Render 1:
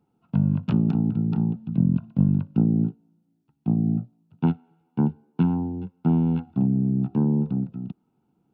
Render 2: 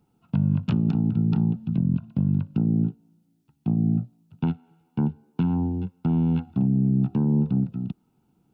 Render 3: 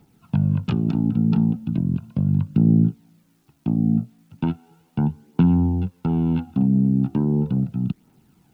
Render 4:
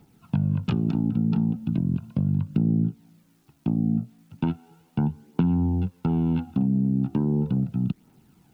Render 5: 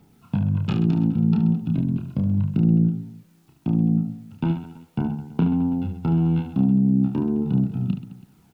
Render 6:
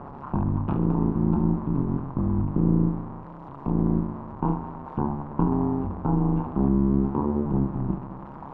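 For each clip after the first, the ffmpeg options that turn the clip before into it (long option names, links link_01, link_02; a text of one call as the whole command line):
ffmpeg -i in.wav -af "highshelf=frequency=2000:gain=8.5,alimiter=limit=-17dB:level=0:latency=1:release=247,lowshelf=frequency=120:gain=10" out.wav
ffmpeg -i in.wav -filter_complex "[0:a]asplit=2[link_01][link_02];[link_02]alimiter=limit=-24dB:level=0:latency=1:release=303,volume=1dB[link_03];[link_01][link_03]amix=inputs=2:normalize=0,acrusher=bits=10:mix=0:aa=0.000001,aphaser=in_gain=1:out_gain=1:delay=4.6:decay=0.38:speed=0.37:type=triangular" out.wav
ffmpeg -i in.wav -af "acompressor=threshold=-20dB:ratio=3" out.wav
ffmpeg -i in.wav -af "aecho=1:1:30|72|130.8|213.1|328.4:0.631|0.398|0.251|0.158|0.1" out.wav
ffmpeg -i in.wav -af "aeval=exprs='val(0)+0.5*0.0237*sgn(val(0))':channel_layout=same,lowpass=frequency=1000:width_type=q:width=4.9,tremolo=f=140:d=0.919" out.wav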